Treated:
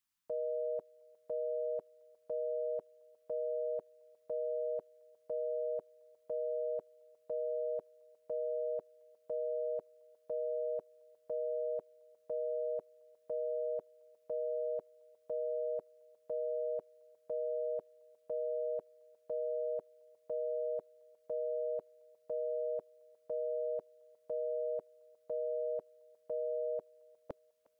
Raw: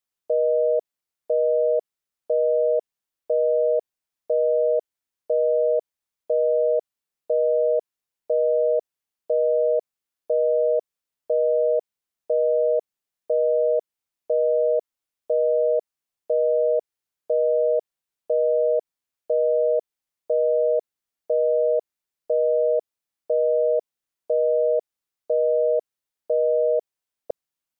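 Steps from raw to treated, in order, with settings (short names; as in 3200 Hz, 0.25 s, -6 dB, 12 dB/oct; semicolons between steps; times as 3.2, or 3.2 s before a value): band shelf 520 Hz -16 dB 1.2 oct; notch 400 Hz, Q 12; on a send: thinning echo 0.357 s, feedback 63%, high-pass 670 Hz, level -22 dB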